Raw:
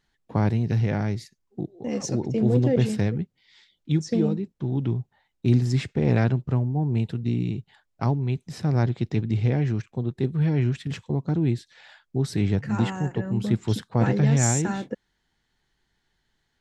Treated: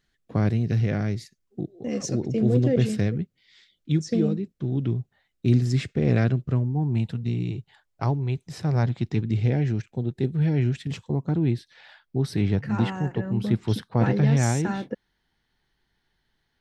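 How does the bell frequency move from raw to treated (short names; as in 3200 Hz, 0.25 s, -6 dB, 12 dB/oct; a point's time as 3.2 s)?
bell -12 dB 0.31 oct
6.5 s 890 Hz
7.47 s 220 Hz
8.63 s 220 Hz
9.47 s 1100 Hz
10.83 s 1100 Hz
11.4 s 7200 Hz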